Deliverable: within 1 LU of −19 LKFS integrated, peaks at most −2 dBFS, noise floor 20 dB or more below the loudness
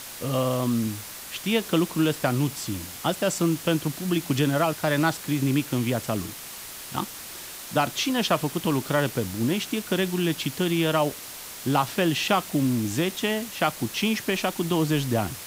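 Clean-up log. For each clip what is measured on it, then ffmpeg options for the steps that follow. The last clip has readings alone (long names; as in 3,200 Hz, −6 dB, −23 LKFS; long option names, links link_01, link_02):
background noise floor −39 dBFS; target noise floor −46 dBFS; integrated loudness −25.5 LKFS; sample peak −9.0 dBFS; target loudness −19.0 LKFS
→ -af "afftdn=noise_reduction=7:noise_floor=-39"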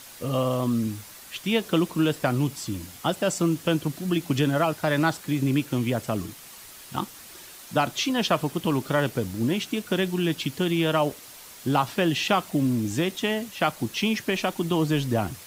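background noise floor −45 dBFS; target noise floor −46 dBFS
→ -af "afftdn=noise_reduction=6:noise_floor=-45"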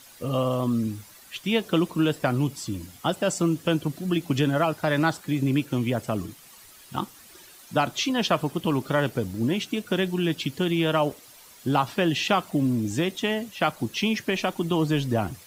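background noise floor −50 dBFS; integrated loudness −26.0 LKFS; sample peak −9.5 dBFS; target loudness −19.0 LKFS
→ -af "volume=7dB"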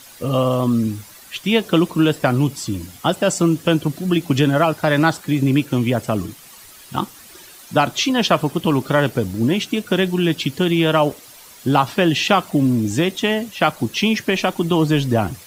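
integrated loudness −19.0 LKFS; sample peak −2.5 dBFS; background noise floor −43 dBFS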